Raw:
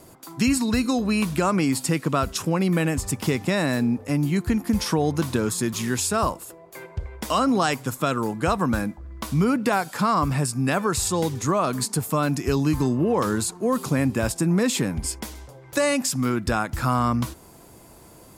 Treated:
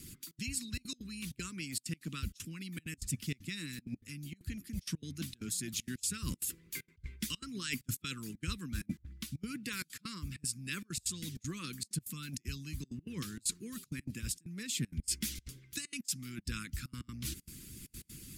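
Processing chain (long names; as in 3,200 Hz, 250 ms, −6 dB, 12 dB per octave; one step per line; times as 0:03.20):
Chebyshev band-stop filter 200–2,600 Hz, order 2
reversed playback
downward compressor 16 to 1, threshold −37 dBFS, peak gain reduction 20 dB
reversed playback
gate pattern "xxxx.xxxxx.x." 194 BPM −24 dB
harmonic and percussive parts rebalanced harmonic −12 dB
level +6.5 dB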